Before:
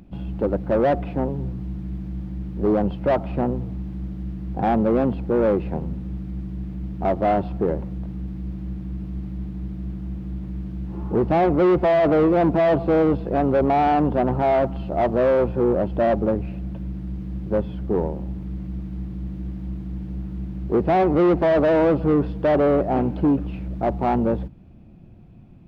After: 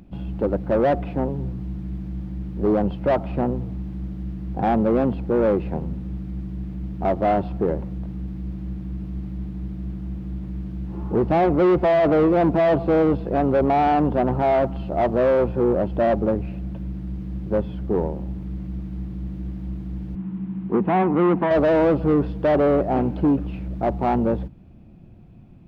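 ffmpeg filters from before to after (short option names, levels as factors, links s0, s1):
-filter_complex "[0:a]asettb=1/sr,asplit=3[s0][s1][s2];[s0]atrim=end=20.154[s3];[s1]atrim=start=20.15:end=21.51,asetpts=PTS-STARTPTS,afade=t=in:d=0.004:c=qsin,afade=t=out:st=1.356:d=0.004:c=qsin,highpass=160,equalizer=f=200:t=q:w=4:g=9,equalizer=f=410:t=q:w=4:g=-3,equalizer=f=590:t=q:w=4:g=-9,equalizer=f=1000:t=q:w=4:g=6,lowpass=f=3100:w=0.5412,lowpass=f=3100:w=1.3066[s4];[s2]atrim=start=21.506[s5];[s3][s4]acrossfade=d=0.004:c1=hsin:c2=qsin[s6];[s6][s5]acrossfade=d=0.004:c1=qsin:c2=hsin"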